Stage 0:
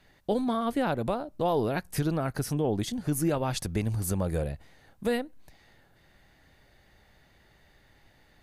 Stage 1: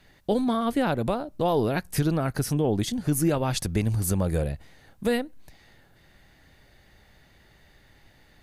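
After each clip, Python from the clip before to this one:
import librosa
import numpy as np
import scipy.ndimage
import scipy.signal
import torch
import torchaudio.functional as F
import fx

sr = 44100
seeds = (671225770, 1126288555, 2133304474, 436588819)

y = fx.peak_eq(x, sr, hz=800.0, db=-2.5, octaves=2.1)
y = y * librosa.db_to_amplitude(4.5)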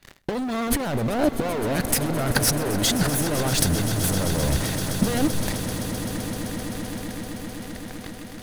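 y = fx.leveller(x, sr, passes=5)
y = fx.over_compress(y, sr, threshold_db=-20.0, ratio=-0.5)
y = fx.echo_swell(y, sr, ms=129, loudest=8, wet_db=-14.5)
y = y * librosa.db_to_amplitude(-2.0)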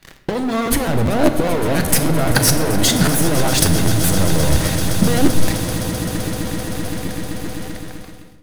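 y = fx.fade_out_tail(x, sr, length_s=0.83)
y = fx.room_shoebox(y, sr, seeds[0], volume_m3=480.0, walls='mixed', distance_m=0.61)
y = fx.buffer_crackle(y, sr, first_s=0.65, period_s=0.2, block=512, kind='repeat')
y = y * librosa.db_to_amplitude(5.5)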